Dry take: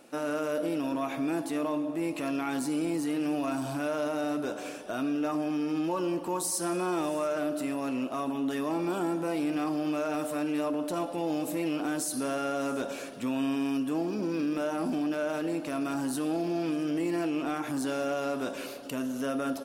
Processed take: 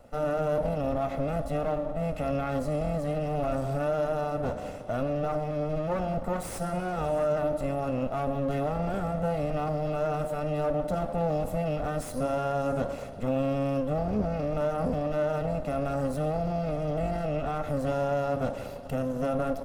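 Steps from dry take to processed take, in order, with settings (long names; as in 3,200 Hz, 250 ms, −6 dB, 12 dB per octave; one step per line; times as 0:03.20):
lower of the sound and its delayed copy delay 1.5 ms
tilt shelving filter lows +8.5 dB, about 1,100 Hz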